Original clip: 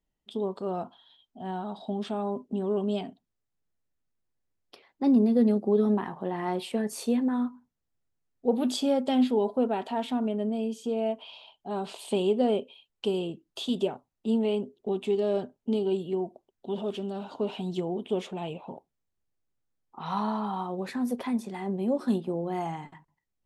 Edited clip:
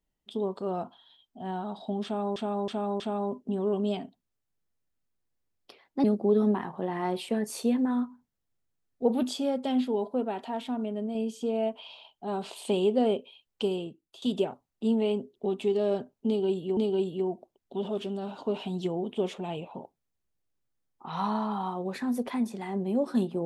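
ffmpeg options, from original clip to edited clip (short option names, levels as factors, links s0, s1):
-filter_complex "[0:a]asplit=9[s0][s1][s2][s3][s4][s5][s6][s7][s8];[s0]atrim=end=2.362[s9];[s1]atrim=start=2.038:end=2.362[s10];[s2]atrim=start=2.038:end=2.362[s11];[s3]atrim=start=2.038:end=5.082[s12];[s4]atrim=start=5.468:end=8.662[s13];[s5]atrim=start=8.658:end=10.582,asetpts=PTS-STARTPTS,volume=0.668[s14];[s6]atrim=start=10.578:end=13.65,asetpts=PTS-STARTPTS,afade=t=out:st=2.482:d=0.59:silence=0.11885[s15];[s7]atrim=start=13.65:end=16.202,asetpts=PTS-STARTPTS,afade=t=in:d=0.004:c=hsin:silence=0.11885[s16];[s8]atrim=start=15.698[s17];[s9][s10]acrossfade=d=0.004:c1=hsin:c2=hsin[s18];[s18][s11]acrossfade=d=0.004:c1=hsin:c2=hsin[s19];[s19][s12]acrossfade=d=0.004:c1=hsin:c2=hsin[s20];[s20][s13]acrossfade=d=0.004:c1=hsin:c2=hsin[s21];[s21][s14]acrossfade=d=0.004:c1=hsin:c2=hsin[s22];[s15][s16]concat=n=2:v=0:a=1[s23];[s22][s23]acrossfade=d=0.004:c1=hsin:c2=hsin[s24];[s24][s17]acrossfade=d=0.004:c1=hsin:c2=hsin"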